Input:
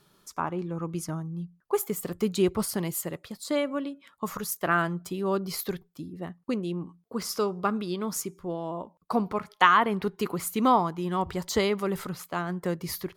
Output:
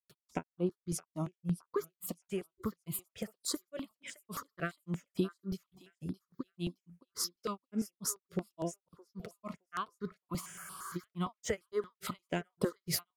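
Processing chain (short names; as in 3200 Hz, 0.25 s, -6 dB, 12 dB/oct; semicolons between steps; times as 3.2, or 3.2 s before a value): HPF 69 Hz; notch 840 Hz, Q 5.4; compressor 16:1, threshold -36 dBFS, peak gain reduction 21.5 dB; grains 0.152 s, grains 3.5/s, pitch spread up and down by 0 st; thinning echo 0.617 s, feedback 23%, high-pass 1000 Hz, level -14 dB; spectral freeze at 10.42, 0.52 s; step phaser 8.7 Hz 270–6700 Hz; gain +11 dB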